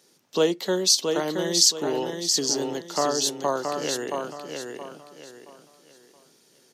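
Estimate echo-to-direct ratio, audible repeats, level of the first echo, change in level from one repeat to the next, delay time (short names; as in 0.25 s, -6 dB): -4.5 dB, 3, -5.0 dB, -10.0 dB, 0.673 s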